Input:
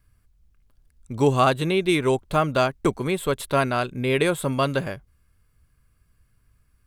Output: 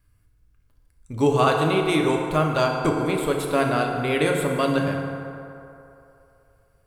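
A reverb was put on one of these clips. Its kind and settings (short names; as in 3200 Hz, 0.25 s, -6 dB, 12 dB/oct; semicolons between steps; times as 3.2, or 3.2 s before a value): FDN reverb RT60 2.9 s, low-frequency decay 0.7×, high-frequency decay 0.45×, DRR 0.5 dB; gain -2 dB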